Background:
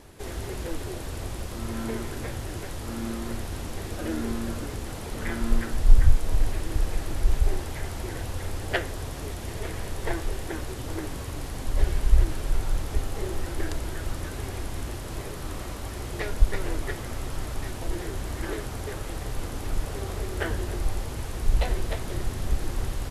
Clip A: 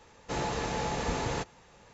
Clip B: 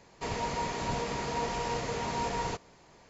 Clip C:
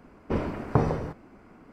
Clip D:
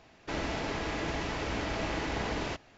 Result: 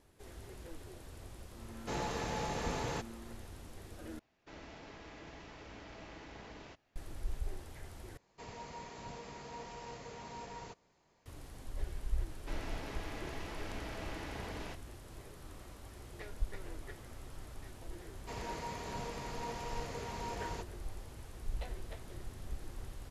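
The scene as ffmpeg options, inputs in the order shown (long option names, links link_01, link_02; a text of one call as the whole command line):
ffmpeg -i bed.wav -i cue0.wav -i cue1.wav -i cue2.wav -i cue3.wav -filter_complex "[4:a]asplit=2[link_01][link_02];[2:a]asplit=2[link_03][link_04];[0:a]volume=-16.5dB,asplit=3[link_05][link_06][link_07];[link_05]atrim=end=4.194[link_08];[link_01]atrim=end=2.77,asetpts=PTS-STARTPTS,volume=-17.5dB[link_09];[link_06]atrim=start=6.956:end=8.174[link_10];[link_03]atrim=end=3.09,asetpts=PTS-STARTPTS,volume=-14.5dB[link_11];[link_07]atrim=start=11.256[link_12];[1:a]atrim=end=1.93,asetpts=PTS-STARTPTS,volume=-5.5dB,afade=type=in:duration=0.004:curve=hsin,afade=type=out:start_time=1.926:duration=0.004:curve=hsin,adelay=1580[link_13];[link_02]atrim=end=2.77,asetpts=PTS-STARTPTS,volume=-11dB,afade=type=in:duration=0.004:curve=hsin,afade=type=out:start_time=2.766:duration=0.004:curve=hsin,adelay=12190[link_14];[link_04]atrim=end=3.09,asetpts=PTS-STARTPTS,volume=-9.5dB,afade=type=in:duration=0.004:curve=hsin,afade=type=out:start_time=3.086:duration=0.004:curve=hsin,adelay=18060[link_15];[link_08][link_09]acrossfade=duration=0.004:curve1=hsin:curve2=hsin[link_16];[link_16][link_10]acrossfade=duration=0.004:curve1=hsin:curve2=hsin[link_17];[link_17][link_11]acrossfade=duration=0.004:curve1=hsin:curve2=hsin[link_18];[link_18][link_12]acrossfade=duration=0.004:curve1=hsin:curve2=hsin[link_19];[link_19][link_13][link_14][link_15]amix=inputs=4:normalize=0" out.wav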